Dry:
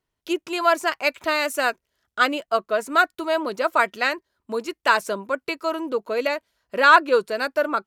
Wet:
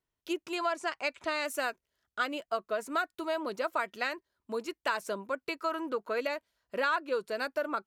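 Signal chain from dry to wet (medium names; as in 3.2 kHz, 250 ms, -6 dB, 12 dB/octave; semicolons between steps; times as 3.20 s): 0.55–1.46 s: low-pass 9.6 kHz 24 dB/octave; 5.60–6.20 s: peaking EQ 1.5 kHz +8 dB 0.97 oct; compression 4:1, threshold -20 dBFS, peak gain reduction 10 dB; trim -7.5 dB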